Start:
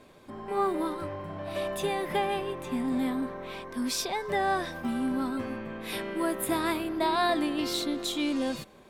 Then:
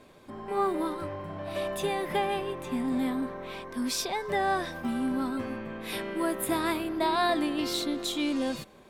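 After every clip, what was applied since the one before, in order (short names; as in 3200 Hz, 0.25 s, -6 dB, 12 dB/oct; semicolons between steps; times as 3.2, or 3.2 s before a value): nothing audible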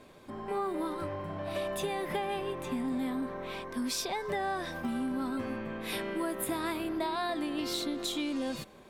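compressor, threshold -30 dBFS, peak gain reduction 8 dB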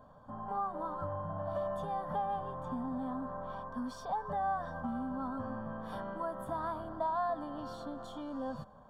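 polynomial smoothing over 41 samples; fixed phaser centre 880 Hz, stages 4; gain +2 dB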